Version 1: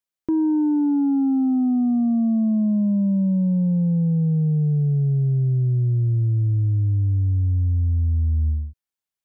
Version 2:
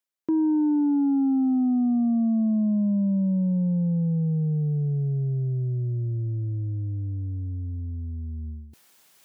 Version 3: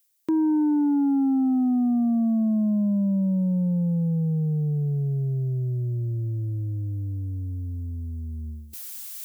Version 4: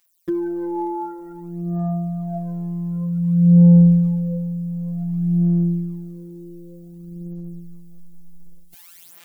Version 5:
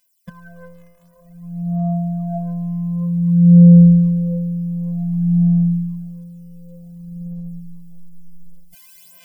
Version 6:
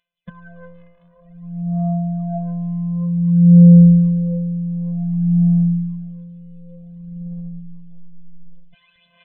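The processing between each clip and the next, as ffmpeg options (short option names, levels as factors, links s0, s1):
-af "areverse,acompressor=mode=upward:threshold=0.0316:ratio=2.5,areverse,highpass=150,volume=0.794"
-af "crystalizer=i=7.5:c=0"
-filter_complex "[0:a]acrossover=split=3000[s0][s1];[s1]acompressor=threshold=0.00447:ratio=4:attack=1:release=60[s2];[s0][s2]amix=inputs=2:normalize=0,afftfilt=real='hypot(re,im)*cos(PI*b)':imag='0':win_size=1024:overlap=0.75,aphaser=in_gain=1:out_gain=1:delay=2.4:decay=0.7:speed=0.54:type=sinusoidal,volume=1.58"
-af "afftfilt=real='re*eq(mod(floor(b*sr/1024/240),2),0)':imag='im*eq(mod(floor(b*sr/1024/240),2),0)':win_size=1024:overlap=0.75,volume=1.5"
-af "aresample=8000,aresample=44100"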